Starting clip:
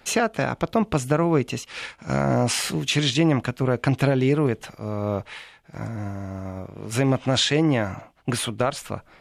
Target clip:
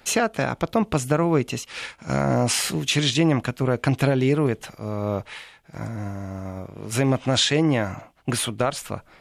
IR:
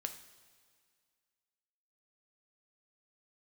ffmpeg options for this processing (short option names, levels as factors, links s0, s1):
-af "highshelf=f=6500:g=4.5"